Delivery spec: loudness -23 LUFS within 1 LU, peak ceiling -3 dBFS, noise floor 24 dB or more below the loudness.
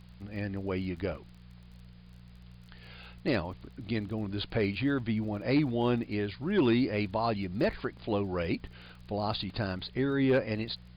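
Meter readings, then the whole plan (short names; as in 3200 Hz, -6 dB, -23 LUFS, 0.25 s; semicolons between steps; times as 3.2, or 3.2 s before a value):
ticks 31/s; hum 60 Hz; harmonics up to 180 Hz; hum level -49 dBFS; loudness -31.5 LUFS; peak -18.5 dBFS; loudness target -23.0 LUFS
-> de-click; de-hum 60 Hz, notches 3; gain +8.5 dB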